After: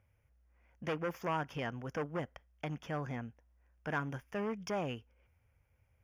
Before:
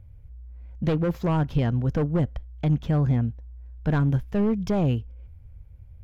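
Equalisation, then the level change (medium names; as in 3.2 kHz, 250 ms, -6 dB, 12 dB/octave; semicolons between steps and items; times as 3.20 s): boxcar filter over 11 samples; differentiator; +13.5 dB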